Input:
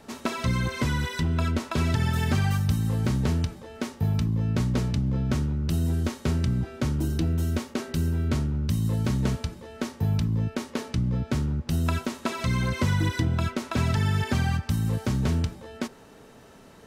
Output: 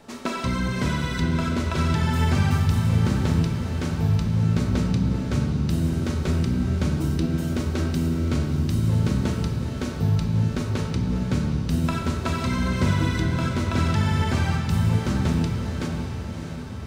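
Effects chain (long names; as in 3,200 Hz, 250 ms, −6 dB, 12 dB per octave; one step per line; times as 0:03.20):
parametric band 12,000 Hz −6 dB 0.34 octaves
feedback delay with all-pass diffusion 625 ms, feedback 59%, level −7.5 dB
on a send at −2.5 dB: convolution reverb RT60 2.1 s, pre-delay 6 ms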